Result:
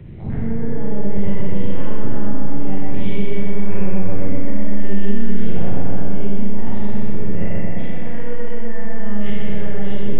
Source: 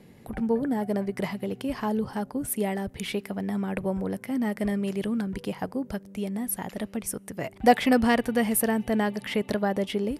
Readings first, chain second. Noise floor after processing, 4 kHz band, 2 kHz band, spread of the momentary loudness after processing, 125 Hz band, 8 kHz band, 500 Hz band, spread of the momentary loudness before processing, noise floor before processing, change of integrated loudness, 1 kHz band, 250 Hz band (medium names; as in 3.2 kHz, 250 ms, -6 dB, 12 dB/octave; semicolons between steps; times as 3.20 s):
-14 dBFS, -6.0 dB, -3.5 dB, 5 LU, +11.0 dB, under -40 dB, -0.5 dB, 11 LU, -51 dBFS, +1.5 dB, -7.0 dB, +2.5 dB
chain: every event in the spectrogram widened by 120 ms; compressor with a negative ratio -25 dBFS, ratio -1; bass shelf 320 Hz +6.5 dB; LPC vocoder at 8 kHz pitch kept; peaking EQ 130 Hz +10.5 dB 1.6 oct; bucket-brigade echo 126 ms, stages 2048, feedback 74%, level -3.5 dB; Schroeder reverb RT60 1.5 s, combs from 31 ms, DRR -4 dB; three bands compressed up and down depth 40%; trim -13.5 dB